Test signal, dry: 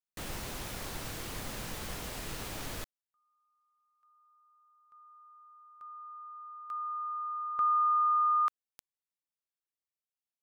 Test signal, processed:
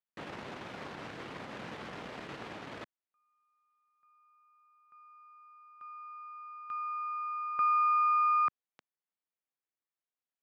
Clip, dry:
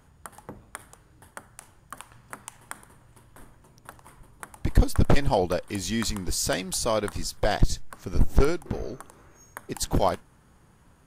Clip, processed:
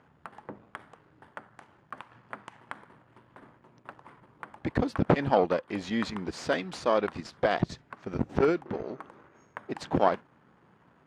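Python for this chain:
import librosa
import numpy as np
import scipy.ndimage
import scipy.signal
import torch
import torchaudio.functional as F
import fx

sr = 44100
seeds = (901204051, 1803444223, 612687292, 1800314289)

y = np.where(x < 0.0, 10.0 ** (-7.0 / 20.0) * x, x)
y = fx.bandpass_edges(y, sr, low_hz=170.0, high_hz=2500.0)
y = y * librosa.db_to_amplitude(3.0)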